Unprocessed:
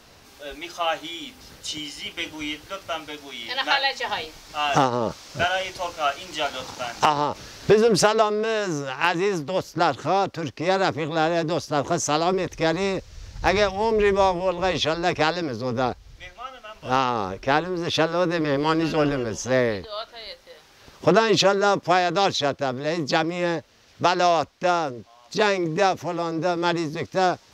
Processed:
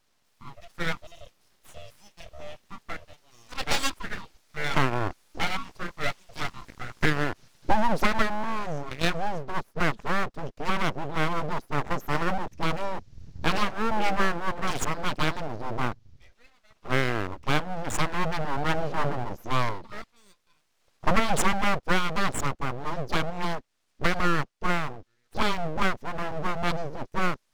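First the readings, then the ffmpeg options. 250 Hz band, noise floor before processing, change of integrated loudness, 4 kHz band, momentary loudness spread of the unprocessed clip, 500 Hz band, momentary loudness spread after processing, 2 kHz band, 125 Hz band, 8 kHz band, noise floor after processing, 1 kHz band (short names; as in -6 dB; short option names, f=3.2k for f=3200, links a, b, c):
-5.5 dB, -52 dBFS, -6.0 dB, -7.5 dB, 13 LU, -11.0 dB, 15 LU, -2.5 dB, -1.0 dB, -5.5 dB, -70 dBFS, -6.0 dB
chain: -af "afwtdn=0.0447,aeval=exprs='abs(val(0))':c=same,volume=-1.5dB"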